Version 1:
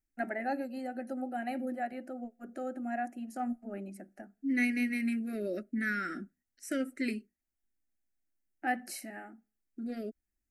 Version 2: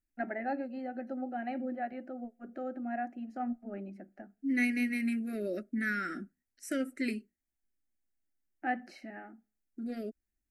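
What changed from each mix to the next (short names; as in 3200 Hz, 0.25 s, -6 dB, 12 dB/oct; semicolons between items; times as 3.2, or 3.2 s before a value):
first voice: add air absorption 240 m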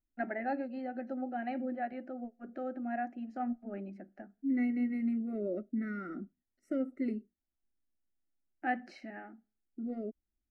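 first voice: add LPF 6100 Hz 12 dB/oct; second voice: add polynomial smoothing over 65 samples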